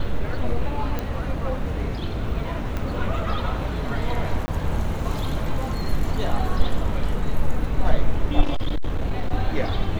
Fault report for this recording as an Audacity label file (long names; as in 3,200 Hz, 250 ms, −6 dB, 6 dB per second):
0.990000	0.990000	click −13 dBFS
2.770000	2.770000	click −15 dBFS
4.460000	4.480000	drop-out 20 ms
8.410000	9.310000	clipping −17.5 dBFS